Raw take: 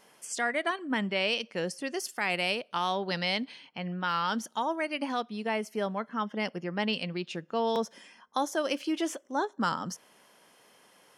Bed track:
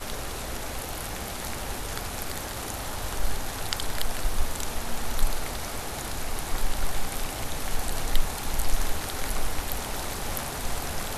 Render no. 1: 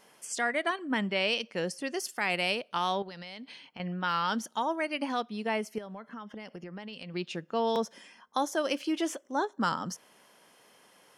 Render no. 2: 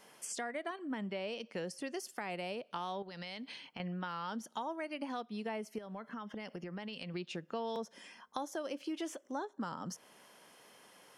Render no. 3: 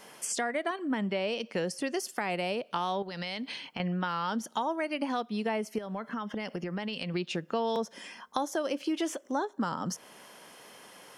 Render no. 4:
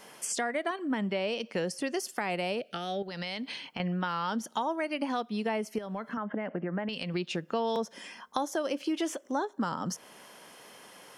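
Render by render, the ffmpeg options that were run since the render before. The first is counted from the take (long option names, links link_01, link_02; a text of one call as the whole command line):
ffmpeg -i in.wav -filter_complex "[0:a]asettb=1/sr,asplit=3[link_01][link_02][link_03];[link_01]atrim=end=3.024[link_04];[link_02]atrim=start=3.02:end=3.8,asetpts=PTS-STARTPTS,afade=type=in:duration=0.004:curve=qsin,afade=type=out:start_time=0.776:duration=0.004:curve=qsin,acompressor=threshold=-40dB:ratio=10:attack=3.2:release=140:knee=1:detection=peak[link_05];[link_03]atrim=start=3.796[link_06];[link_04][link_05]acrossfade=duration=0.004:curve1=hsin:curve2=qsin[link_07];[link_07][link_06]acrossfade=duration=0.004:curve1=qsin:curve2=hsin,asettb=1/sr,asplit=3[link_08][link_09][link_10];[link_08]atrim=end=5.784[link_11];[link_09]atrim=start=5.78:end=7.14,asetpts=PTS-STARTPTS,afade=type=in:duration=0.004:curve=qsin,afade=type=out:start_time=1.356:duration=0.004:curve=qsin,acompressor=threshold=-38dB:ratio=16:attack=3.2:release=140:knee=1:detection=peak[link_12];[link_10]atrim=start=7.136[link_13];[link_11][link_12]acrossfade=duration=0.004:curve1=hsin:curve2=qsin[link_14];[link_14][link_13]acrossfade=duration=0.004:curve1=qsin:curve2=hsin" out.wav
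ffmpeg -i in.wav -filter_complex "[0:a]acrossover=split=700|930[link_01][link_02][link_03];[link_03]alimiter=level_in=5dB:limit=-24dB:level=0:latency=1:release=315,volume=-5dB[link_04];[link_01][link_02][link_04]amix=inputs=3:normalize=0,acompressor=threshold=-39dB:ratio=3" out.wav
ffmpeg -i in.wav -af "volume=8.5dB" out.wav
ffmpeg -i in.wav -filter_complex "[0:a]asettb=1/sr,asplit=3[link_01][link_02][link_03];[link_01]atrim=end=2.594[link_04];[link_02]atrim=start=2.59:end=3.08,asetpts=PTS-STARTPTS,afade=type=in:duration=0.004:curve=qsin,afade=type=out:start_time=0.486:duration=0.004:curve=qsin,asuperstop=centerf=1000:order=4:qfactor=1.8[link_05];[link_03]atrim=start=3.076[link_06];[link_04][link_05]acrossfade=duration=0.004:curve1=hsin:curve2=qsin[link_07];[link_07][link_06]acrossfade=duration=0.004:curve1=qsin:curve2=hsin,asettb=1/sr,asplit=3[link_08][link_09][link_10];[link_08]atrim=end=6.174[link_11];[link_09]atrim=start=6.17:end=6.89,asetpts=PTS-STARTPTS,afade=type=in:duration=0.004:curve=qsin,afade=type=out:start_time=0.716:duration=0.004:curve=qsin,highpass=140,equalizer=frequency=180:width_type=q:width=4:gain=3,equalizer=frequency=290:width_type=q:width=4:gain=6,equalizer=frequency=630:width_type=q:width=4:gain=6,equalizer=frequency=1600:width_type=q:width=4:gain=4,lowpass=frequency=2100:width=0.5412,lowpass=frequency=2100:width=1.3066[link_12];[link_10]atrim=start=6.886[link_13];[link_11][link_12]acrossfade=duration=0.004:curve1=hsin:curve2=qsin[link_14];[link_14][link_13]acrossfade=duration=0.004:curve1=qsin:curve2=hsin" out.wav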